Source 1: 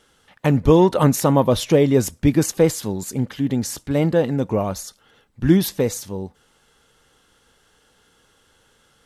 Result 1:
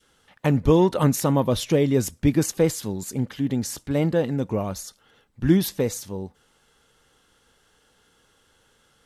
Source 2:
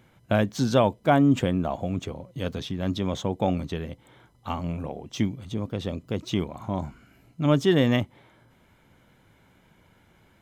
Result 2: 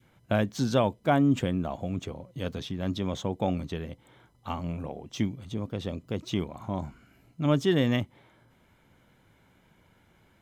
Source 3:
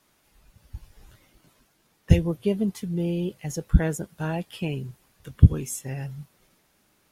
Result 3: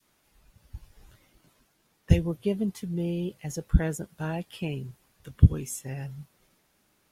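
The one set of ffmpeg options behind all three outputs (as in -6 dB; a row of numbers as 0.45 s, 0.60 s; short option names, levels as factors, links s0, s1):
-af "adynamicequalizer=threshold=0.0251:dfrequency=750:dqfactor=0.75:tfrequency=750:tqfactor=0.75:attack=5:release=100:ratio=0.375:range=2:mode=cutabove:tftype=bell,volume=0.708"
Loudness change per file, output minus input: -4.0 LU, -3.5 LU, -3.0 LU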